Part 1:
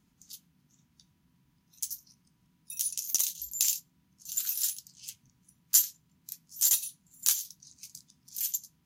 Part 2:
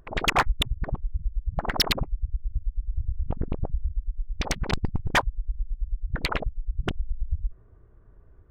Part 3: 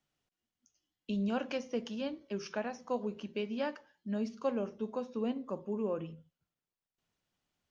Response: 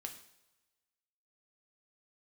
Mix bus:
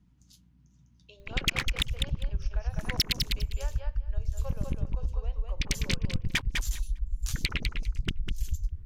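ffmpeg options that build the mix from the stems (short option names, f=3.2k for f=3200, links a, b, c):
-filter_complex "[0:a]aemphasis=mode=reproduction:type=bsi,flanger=delay=5:depth=6.7:regen=49:speed=1.4:shape=triangular,volume=0.5dB[a];[1:a]firequalizer=gain_entry='entry(170,0);entry(650,-21);entry(2200,3)':delay=0.05:min_phase=1,adelay=1200,volume=0.5dB,asplit=2[b][c];[c]volume=-8.5dB[d];[2:a]highpass=f=510:w=0.5412,highpass=f=510:w=1.3066,aeval=exprs='val(0)+0.001*(sin(2*PI*60*n/s)+sin(2*PI*2*60*n/s)/2+sin(2*PI*3*60*n/s)/3+sin(2*PI*4*60*n/s)/4+sin(2*PI*5*60*n/s)/5)':c=same,volume=-6dB,asplit=3[e][f][g];[f]volume=-3.5dB[h];[g]apad=whole_len=390597[i];[a][i]sidechaincompress=threshold=-53dB:ratio=5:attack=49:release=1020[j];[d][h]amix=inputs=2:normalize=0,aecho=0:1:201|402|603:1|0.16|0.0256[k];[j][b][e][k]amix=inputs=4:normalize=0,acompressor=threshold=-23dB:ratio=6"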